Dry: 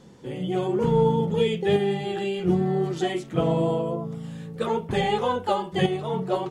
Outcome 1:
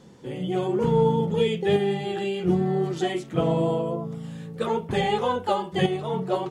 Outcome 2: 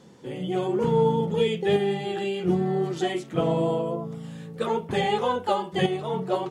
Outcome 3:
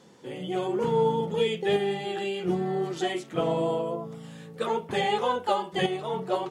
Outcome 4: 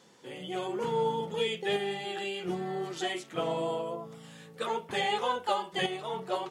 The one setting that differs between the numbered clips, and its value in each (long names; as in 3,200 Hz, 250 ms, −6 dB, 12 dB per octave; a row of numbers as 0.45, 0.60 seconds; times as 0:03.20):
high-pass filter, corner frequency: 42, 140, 400, 1,100 Hertz